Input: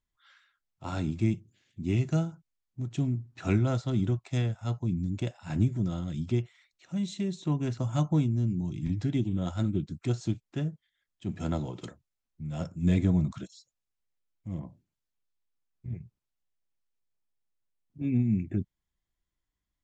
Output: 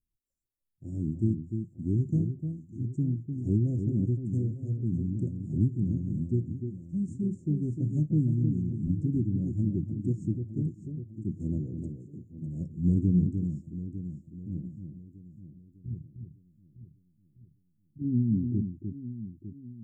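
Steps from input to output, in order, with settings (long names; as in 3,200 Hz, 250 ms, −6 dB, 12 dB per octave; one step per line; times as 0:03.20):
inverse Chebyshev band-stop filter 980–3,900 Hz, stop band 60 dB
delay that swaps between a low-pass and a high-pass 301 ms, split 2,100 Hz, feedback 70%, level −6.5 dB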